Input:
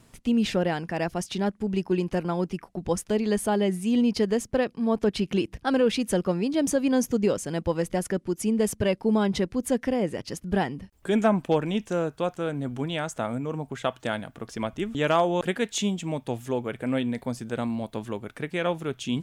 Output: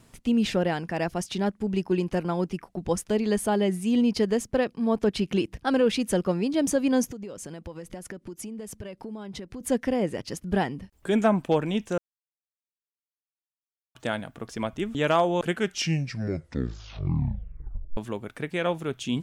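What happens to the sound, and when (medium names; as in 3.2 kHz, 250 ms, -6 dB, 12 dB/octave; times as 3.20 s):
7.04–9.61 s: compression 10:1, threshold -34 dBFS
11.98–13.95 s: mute
15.37 s: tape stop 2.60 s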